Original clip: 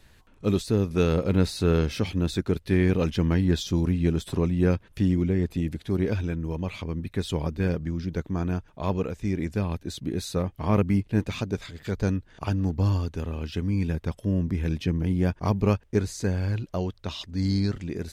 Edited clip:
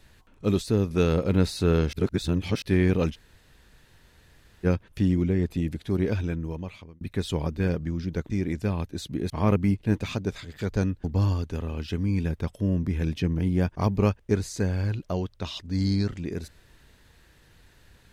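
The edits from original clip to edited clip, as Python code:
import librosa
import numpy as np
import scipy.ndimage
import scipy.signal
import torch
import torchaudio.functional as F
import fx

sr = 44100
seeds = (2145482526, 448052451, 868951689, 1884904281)

y = fx.edit(x, sr, fx.reverse_span(start_s=1.93, length_s=0.69),
    fx.room_tone_fill(start_s=3.14, length_s=1.51, crossfade_s=0.04),
    fx.fade_out_span(start_s=6.34, length_s=0.67),
    fx.cut(start_s=8.3, length_s=0.92),
    fx.cut(start_s=10.22, length_s=0.34),
    fx.cut(start_s=12.3, length_s=0.38), tone=tone)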